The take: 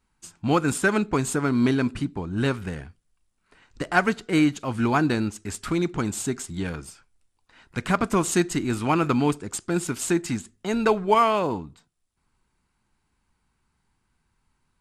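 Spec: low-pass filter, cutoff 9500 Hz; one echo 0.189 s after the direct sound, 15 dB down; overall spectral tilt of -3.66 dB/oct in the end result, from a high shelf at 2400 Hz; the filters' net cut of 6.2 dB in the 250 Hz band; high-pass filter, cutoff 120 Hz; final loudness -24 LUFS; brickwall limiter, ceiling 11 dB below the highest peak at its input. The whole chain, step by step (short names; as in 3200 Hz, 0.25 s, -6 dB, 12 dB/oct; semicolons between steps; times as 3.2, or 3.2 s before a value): HPF 120 Hz; LPF 9500 Hz; bell 250 Hz -8 dB; high shelf 2400 Hz +4.5 dB; limiter -15 dBFS; echo 0.189 s -15 dB; gain +4 dB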